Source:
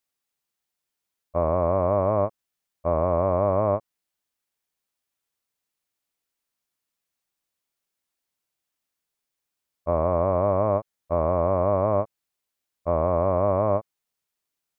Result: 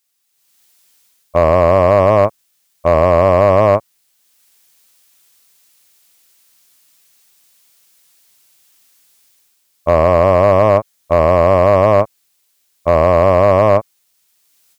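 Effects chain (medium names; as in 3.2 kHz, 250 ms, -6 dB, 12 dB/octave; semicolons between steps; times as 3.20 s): high-pass 51 Hz; treble shelf 2.1 kHz +11.5 dB; level rider gain up to 15.5 dB; overload inside the chain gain 5 dB; trim +3.5 dB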